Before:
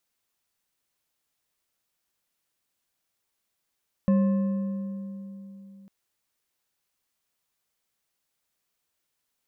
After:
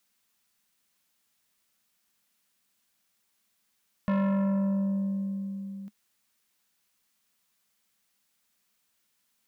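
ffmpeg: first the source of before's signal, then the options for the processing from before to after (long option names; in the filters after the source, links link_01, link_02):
-f lavfi -i "aevalsrc='0.141*pow(10,-3*t/3.56)*sin(2*PI*196*t)+0.0422*pow(10,-3*t/2.626)*sin(2*PI*540.4*t)+0.0126*pow(10,-3*t/2.146)*sin(2*PI*1059.2*t)+0.00376*pow(10,-3*t/1.846)*sin(2*PI*1750.9*t)+0.00112*pow(10,-3*t/1.636)*sin(2*PI*2614.6*t)':duration=1.8:sample_rate=44100"
-filter_complex "[0:a]equalizer=frequency=210:width=2.7:gain=11,acrossover=split=990[link_01][link_02];[link_01]asoftclip=type=tanh:threshold=-25dB[link_03];[link_02]acontrast=48[link_04];[link_03][link_04]amix=inputs=2:normalize=0"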